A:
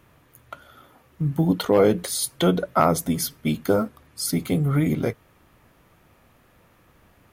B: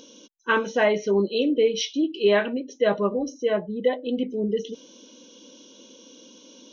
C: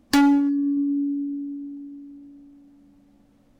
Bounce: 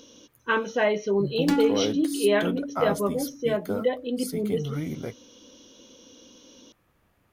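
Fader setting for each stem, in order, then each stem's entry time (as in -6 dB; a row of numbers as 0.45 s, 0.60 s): -10.0 dB, -2.5 dB, -8.5 dB; 0.00 s, 0.00 s, 1.35 s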